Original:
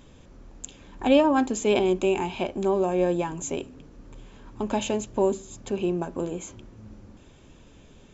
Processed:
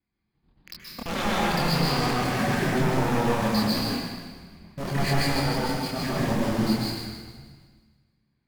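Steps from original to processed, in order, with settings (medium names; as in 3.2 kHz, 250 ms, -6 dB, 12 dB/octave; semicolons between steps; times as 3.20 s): time reversed locally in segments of 79 ms; band-stop 980 Hz, Q 13; gate -44 dBFS, range -27 dB; high-pass 160 Hz 6 dB/octave; peaking EQ 780 Hz -5.5 dB 0.79 oct; pitch shift -6.5 st; in parallel at -6 dB: companded quantiser 2-bit; on the sum: wavefolder -24.5 dBFS; chorus voices 4, 1.4 Hz, delay 25 ms, depth 3 ms; feedback echo behind a high-pass 150 ms, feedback 49%, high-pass 1.4 kHz, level -11 dB; reverberation RT60 1.3 s, pre-delay 116 ms, DRR -4 dB; speed mistake 25 fps video run at 24 fps; trim +2 dB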